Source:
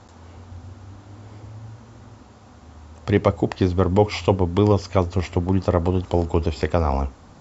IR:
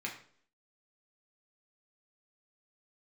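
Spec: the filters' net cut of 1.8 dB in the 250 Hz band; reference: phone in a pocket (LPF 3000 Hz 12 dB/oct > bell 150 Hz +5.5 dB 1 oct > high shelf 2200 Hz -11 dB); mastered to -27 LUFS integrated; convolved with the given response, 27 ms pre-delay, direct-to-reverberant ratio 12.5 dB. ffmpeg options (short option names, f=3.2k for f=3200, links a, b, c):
-filter_complex "[0:a]equalizer=f=250:t=o:g=-6,asplit=2[a][b];[1:a]atrim=start_sample=2205,adelay=27[c];[b][c]afir=irnorm=-1:irlink=0,volume=-15dB[d];[a][d]amix=inputs=2:normalize=0,lowpass=3k,equalizer=f=150:t=o:w=1:g=5.5,highshelf=f=2.2k:g=-11,volume=-5dB"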